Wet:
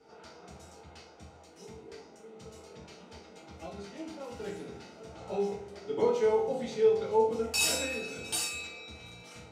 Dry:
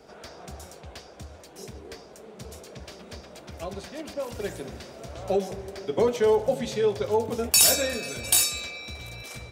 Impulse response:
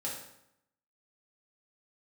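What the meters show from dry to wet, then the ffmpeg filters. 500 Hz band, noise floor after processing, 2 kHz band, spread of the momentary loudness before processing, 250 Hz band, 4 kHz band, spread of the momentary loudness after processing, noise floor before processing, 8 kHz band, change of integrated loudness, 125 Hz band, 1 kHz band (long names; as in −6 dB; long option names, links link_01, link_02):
−3.5 dB, −55 dBFS, −4.0 dB, 22 LU, −5.5 dB, −8.5 dB, 23 LU, −48 dBFS, −11.5 dB, −6.5 dB, −9.0 dB, −3.0 dB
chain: -filter_complex "[0:a]lowpass=7800[link_01];[1:a]atrim=start_sample=2205,asetrate=70560,aresample=44100[link_02];[link_01][link_02]afir=irnorm=-1:irlink=0,volume=-4.5dB"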